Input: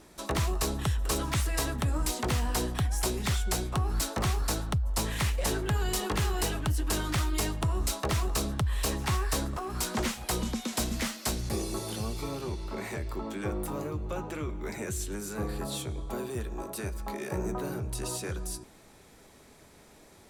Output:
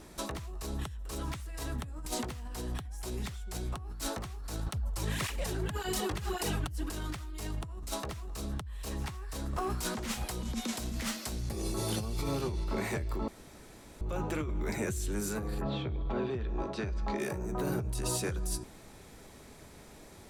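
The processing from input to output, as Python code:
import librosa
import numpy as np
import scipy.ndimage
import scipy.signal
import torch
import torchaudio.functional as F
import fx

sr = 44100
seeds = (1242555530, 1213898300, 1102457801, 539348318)

y = fx.flanger_cancel(x, sr, hz=1.8, depth_ms=4.8, at=(4.67, 6.89), fade=0.02)
y = fx.lowpass(y, sr, hz=fx.line((15.6, 2900.0), (17.18, 6000.0)), slope=24, at=(15.6, 17.18), fade=0.02)
y = fx.edit(y, sr, fx.room_tone_fill(start_s=13.28, length_s=0.73), tone=tone)
y = fx.low_shelf(y, sr, hz=170.0, db=5.0)
y = fx.over_compress(y, sr, threshold_db=-33.0, ratio=-1.0)
y = y * 10.0 ** (-2.5 / 20.0)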